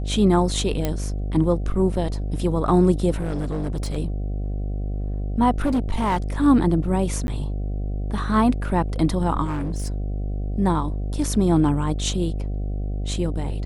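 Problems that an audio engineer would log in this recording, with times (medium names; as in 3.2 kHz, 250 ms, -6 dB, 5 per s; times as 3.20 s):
buzz 50 Hz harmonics 15 -26 dBFS
0.85 s: pop -9 dBFS
3.17–3.98 s: clipped -22 dBFS
5.58–6.18 s: clipped -17 dBFS
7.27–7.28 s: dropout 11 ms
9.44–9.92 s: clipped -22 dBFS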